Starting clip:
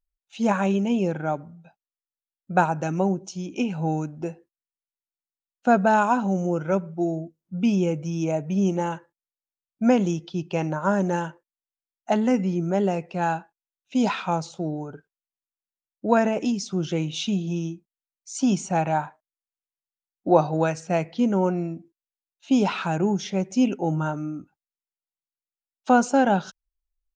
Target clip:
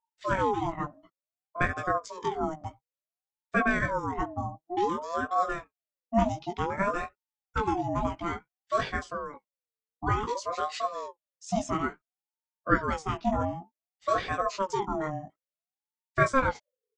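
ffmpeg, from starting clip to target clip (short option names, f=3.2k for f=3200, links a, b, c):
-af "atempo=1.6,flanger=delay=15:depth=5.7:speed=1.1,aeval=exprs='val(0)*sin(2*PI*680*n/s+680*0.35/0.56*sin(2*PI*0.56*n/s))':c=same"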